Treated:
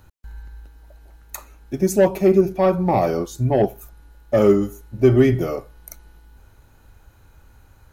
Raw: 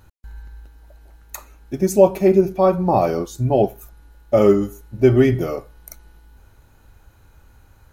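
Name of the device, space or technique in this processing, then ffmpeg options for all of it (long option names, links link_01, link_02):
one-band saturation: -filter_complex "[0:a]acrossover=split=380|4200[link_01][link_02][link_03];[link_02]asoftclip=type=tanh:threshold=-12.5dB[link_04];[link_01][link_04][link_03]amix=inputs=3:normalize=0"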